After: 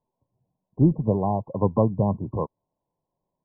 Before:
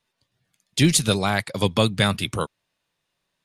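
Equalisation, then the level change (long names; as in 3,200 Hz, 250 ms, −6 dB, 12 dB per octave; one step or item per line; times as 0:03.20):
linear-phase brick-wall low-pass 1,100 Hz
0.0 dB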